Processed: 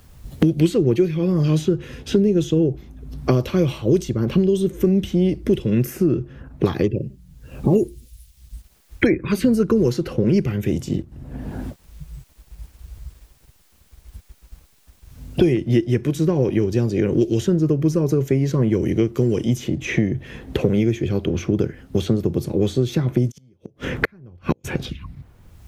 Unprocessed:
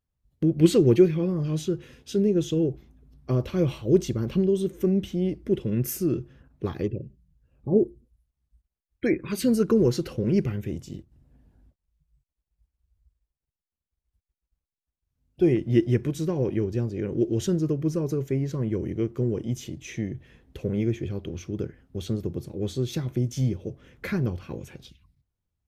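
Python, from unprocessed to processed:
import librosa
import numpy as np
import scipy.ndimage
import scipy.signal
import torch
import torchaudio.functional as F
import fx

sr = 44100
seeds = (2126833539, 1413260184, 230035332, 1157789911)

y = fx.gate_flip(x, sr, shuts_db=-25.0, range_db=-42, at=(23.3, 24.64), fade=0.02)
y = fx.band_squash(y, sr, depth_pct=100)
y = y * librosa.db_to_amplitude(6.0)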